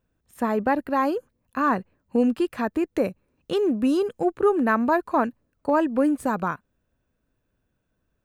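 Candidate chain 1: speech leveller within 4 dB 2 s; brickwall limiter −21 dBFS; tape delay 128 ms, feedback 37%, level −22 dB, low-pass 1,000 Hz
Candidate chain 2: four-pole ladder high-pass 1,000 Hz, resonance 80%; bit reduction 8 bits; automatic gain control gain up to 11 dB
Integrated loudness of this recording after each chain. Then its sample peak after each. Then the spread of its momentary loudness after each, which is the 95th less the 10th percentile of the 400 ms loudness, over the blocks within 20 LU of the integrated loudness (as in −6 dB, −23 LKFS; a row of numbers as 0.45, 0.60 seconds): −30.0, −19.5 LKFS; −20.5, −3.0 dBFS; 8, 20 LU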